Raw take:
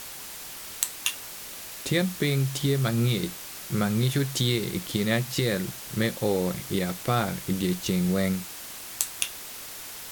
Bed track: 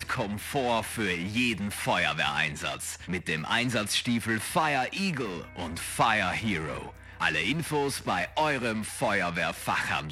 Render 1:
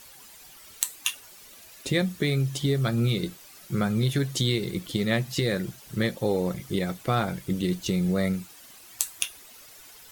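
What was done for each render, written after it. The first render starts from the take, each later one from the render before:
broadband denoise 12 dB, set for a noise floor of −40 dBFS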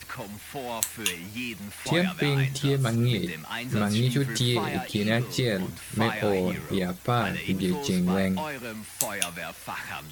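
mix in bed track −7 dB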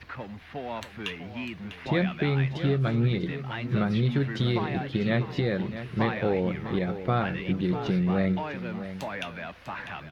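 high-frequency loss of the air 310 metres
single-tap delay 648 ms −11.5 dB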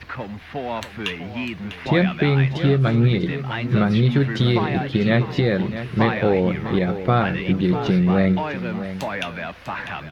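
level +7.5 dB

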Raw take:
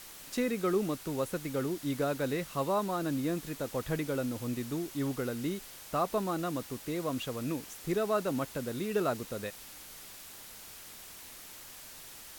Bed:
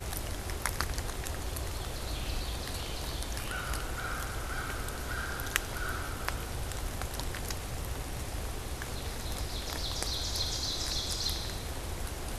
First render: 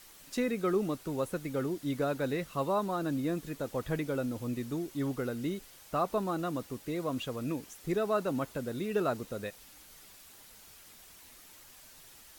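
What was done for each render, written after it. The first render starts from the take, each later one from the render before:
broadband denoise 7 dB, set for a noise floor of −49 dBFS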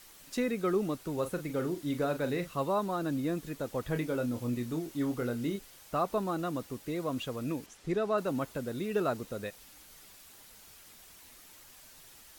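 0:01.13–0:02.54: double-tracking delay 40 ms −10 dB
0:03.93–0:05.56: double-tracking delay 25 ms −7.5 dB
0:07.66–0:08.18: high-frequency loss of the air 52 metres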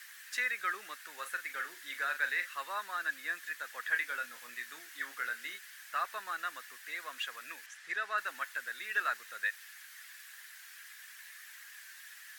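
high-pass with resonance 1,700 Hz, resonance Q 7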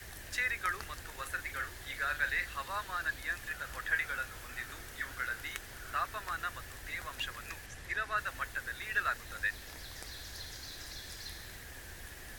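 mix in bed −13.5 dB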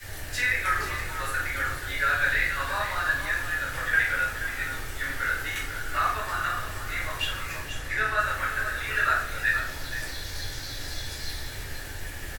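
single-tap delay 479 ms −10.5 dB
rectangular room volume 130 cubic metres, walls mixed, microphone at 2.4 metres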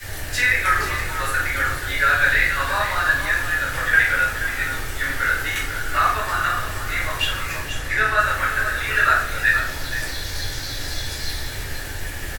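level +7 dB

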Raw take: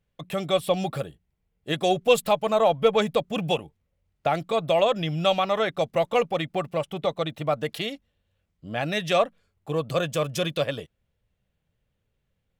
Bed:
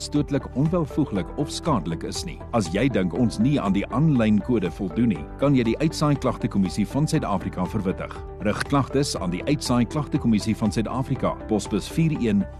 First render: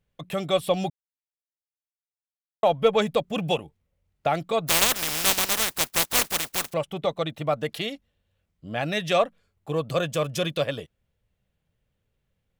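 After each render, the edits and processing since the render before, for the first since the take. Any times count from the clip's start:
0:00.90–0:02.63: silence
0:04.67–0:06.72: compressing power law on the bin magnitudes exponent 0.15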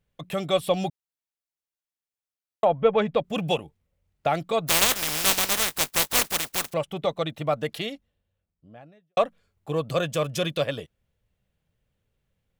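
0:02.64–0:03.23: low-pass filter 1,700 Hz → 3,200 Hz
0:04.79–0:06.18: double-tracking delay 20 ms −13 dB
0:07.61–0:09.17: fade out and dull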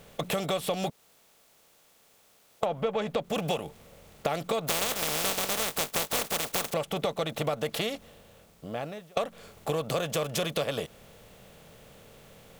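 compressor on every frequency bin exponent 0.6
downward compressor, threshold −26 dBFS, peak gain reduction 13 dB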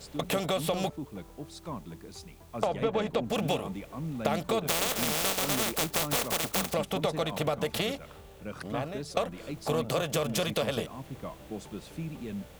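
mix in bed −16.5 dB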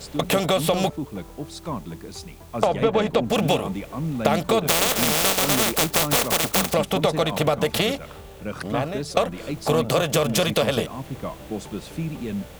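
level +8.5 dB

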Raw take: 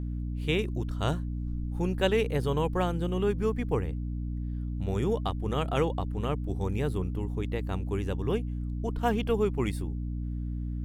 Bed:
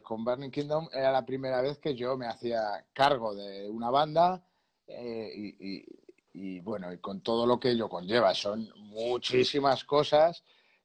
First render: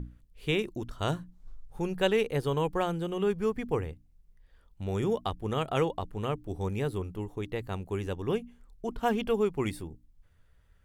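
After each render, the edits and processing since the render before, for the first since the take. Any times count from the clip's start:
mains-hum notches 60/120/180/240/300 Hz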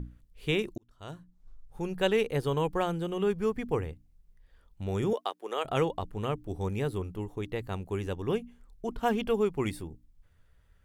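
0:00.78–0:02.15: fade in
0:05.13–0:05.65: high-pass filter 380 Hz 24 dB per octave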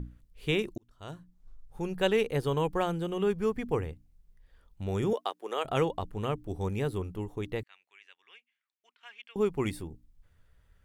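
0:07.63–0:09.36: four-pole ladder band-pass 2,600 Hz, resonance 45%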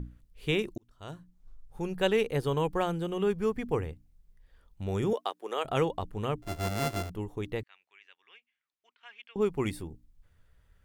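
0:06.42–0:07.10: samples sorted by size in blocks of 64 samples
0:07.61–0:09.42: high-frequency loss of the air 77 metres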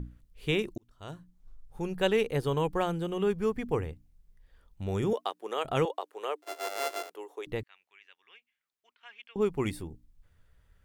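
0:05.85–0:07.47: Butterworth high-pass 390 Hz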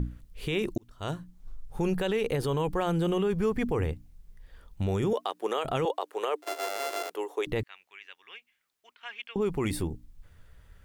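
in parallel at +1 dB: compressor whose output falls as the input rises −35 dBFS, ratio −1
on the sum: brickwall limiter −18.5 dBFS, peak gain reduction 9.5 dB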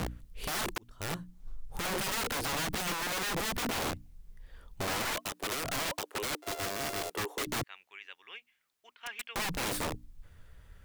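wrap-around overflow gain 28.5 dB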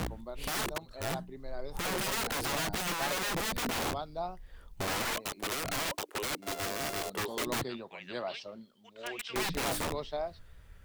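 mix in bed −13 dB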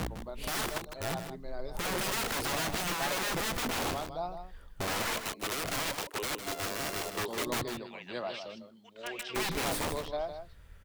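single-tap delay 156 ms −9 dB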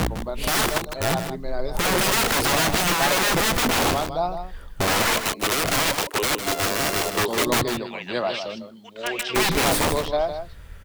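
level +12 dB

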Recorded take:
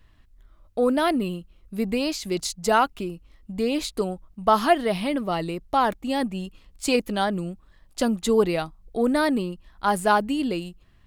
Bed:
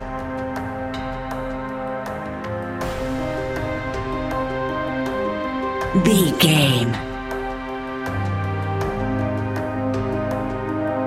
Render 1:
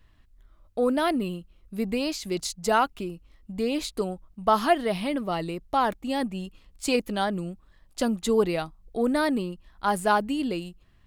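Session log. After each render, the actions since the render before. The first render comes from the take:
level −2.5 dB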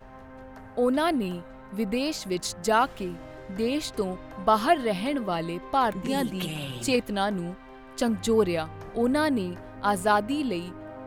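mix in bed −18.5 dB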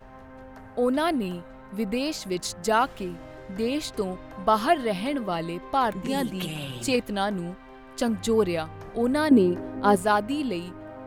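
0:09.31–0:09.96: parametric band 330 Hz +13.5 dB 1.5 octaves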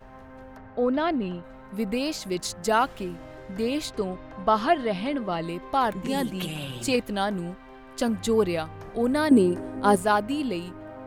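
0:00.57–0:01.44: high-frequency loss of the air 170 metres
0:03.92–0:05.44: high-frequency loss of the air 69 metres
0:09.29–0:09.96: parametric band 8,800 Hz +15 dB 0.45 octaves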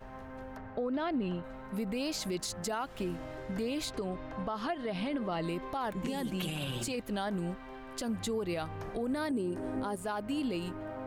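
downward compressor 6 to 1, threshold −28 dBFS, peak gain reduction 14 dB
brickwall limiter −26 dBFS, peak gain reduction 9.5 dB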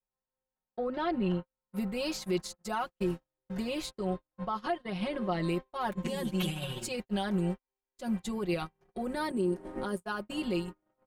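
noise gate −35 dBFS, range −52 dB
comb filter 5.5 ms, depth 91%

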